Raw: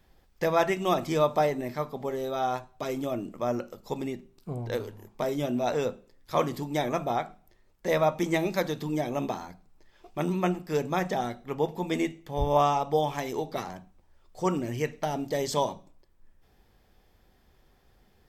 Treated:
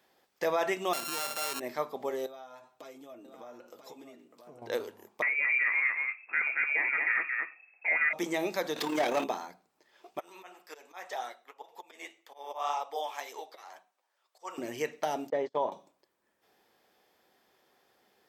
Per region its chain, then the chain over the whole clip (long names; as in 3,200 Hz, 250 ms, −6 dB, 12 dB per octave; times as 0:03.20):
0:00.93–0:01.60: samples sorted by size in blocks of 32 samples + high-shelf EQ 2,900 Hz +10.5 dB
0:02.26–0:04.62: downward compressor 12 to 1, threshold −41 dBFS + notch comb filter 190 Hz + single-tap delay 985 ms −8 dB
0:05.22–0:08.13: single-tap delay 224 ms −5 dB + voice inversion scrambler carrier 2,600 Hz
0:08.76–0:09.24: mu-law and A-law mismatch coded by mu + amplitude modulation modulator 36 Hz, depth 45% + mid-hump overdrive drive 21 dB, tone 5,800 Hz, clips at −19 dBFS
0:10.19–0:14.58: high-pass filter 710 Hz + volume swells 184 ms + flanger 1.9 Hz, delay 3.7 ms, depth 7.5 ms, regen −36%
0:15.30–0:15.72: low-pass filter 1,700 Hz + noise gate −34 dBFS, range −31 dB
whole clip: brickwall limiter −18.5 dBFS; high-pass filter 370 Hz 12 dB per octave